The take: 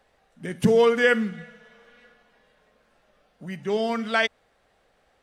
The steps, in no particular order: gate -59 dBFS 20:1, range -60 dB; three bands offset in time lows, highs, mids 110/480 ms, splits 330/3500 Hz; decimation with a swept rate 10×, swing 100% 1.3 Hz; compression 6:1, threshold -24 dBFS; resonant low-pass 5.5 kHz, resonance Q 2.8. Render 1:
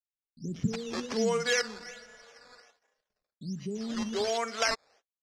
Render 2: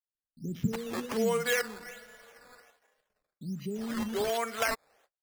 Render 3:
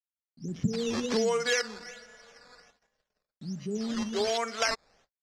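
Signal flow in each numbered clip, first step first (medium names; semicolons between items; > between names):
compression > gate > three bands offset in time > decimation with a swept rate > resonant low-pass; resonant low-pass > gate > compression > three bands offset in time > decimation with a swept rate; three bands offset in time > decimation with a swept rate > resonant low-pass > gate > compression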